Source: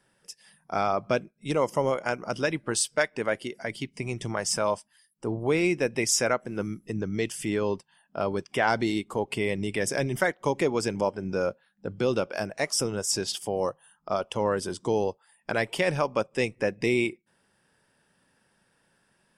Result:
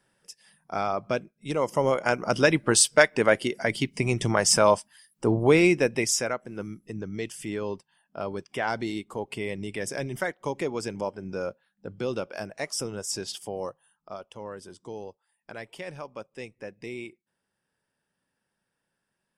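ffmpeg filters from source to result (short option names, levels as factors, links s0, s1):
-af "volume=2.24,afade=t=in:st=1.56:d=0.93:silence=0.354813,afade=t=out:st=5.38:d=0.91:silence=0.266073,afade=t=out:st=13.45:d=0.8:silence=0.375837"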